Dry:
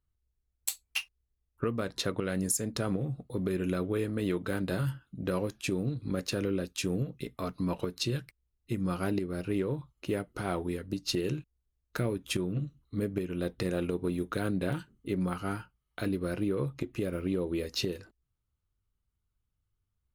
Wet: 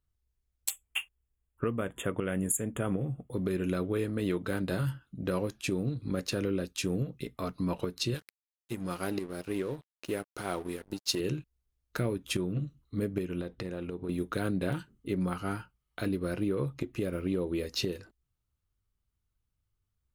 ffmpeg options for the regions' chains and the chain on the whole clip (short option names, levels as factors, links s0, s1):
-filter_complex "[0:a]asettb=1/sr,asplit=3[s0][s1][s2];[s0]atrim=end=0.704[s3];[s1]atrim=start=0.7:end=3.33,asetpts=PTS-STARTPTS,afade=t=in:d=0.004:c=qsin,afade=t=out:st=2.626:d=0.004:c=qsin,asuperstop=centerf=4900:order=20:qfactor=1.5,asoftclip=type=hard:threshold=0.15[s4];[s2]atrim=start=3.326[s5];[s3][s4]acrossfade=d=0.004:c1=hsin:c2=qsin[s6];[s6][s5]acrossfade=d=0.004:c1=qsin:c2=hsin,asettb=1/sr,asplit=3[s7][s8][s9];[s7]atrim=end=8.144[s10];[s8]atrim=start=8.14:end=11.2,asetpts=PTS-STARTPTS,afade=t=in:d=0.004:c=qsin,afade=t=out:st=3.056:d=0.004:c=qsin,bass=f=250:g=-6,treble=f=4000:g=5,aeval=exprs='sgn(val(0))*max(abs(val(0))-0.00376,0)':c=same[s11];[s9]atrim=start=11.196[s12];[s10][s11]acrossfade=d=0.004:c1=hsin:c2=qsin[s13];[s13][s12]acrossfade=d=0.004:c1=qsin:c2=hsin,asettb=1/sr,asplit=3[s14][s15][s16];[s14]atrim=end=13.414[s17];[s15]atrim=start=13.41:end=14.09,asetpts=PTS-STARTPTS,afade=t=in:d=0.004:c=qsin,afade=t=out:st=0.676:d=0.004:c=qsin,highshelf=f=5600:g=-9.5,acompressor=threshold=0.0178:ratio=2.5:attack=3.2:release=140:knee=1:detection=peak[s18];[s16]atrim=start=14.086[s19];[s17][s18]acrossfade=d=0.004:c1=hsin:c2=qsin[s20];[s20][s19]acrossfade=d=0.004:c1=qsin:c2=hsin"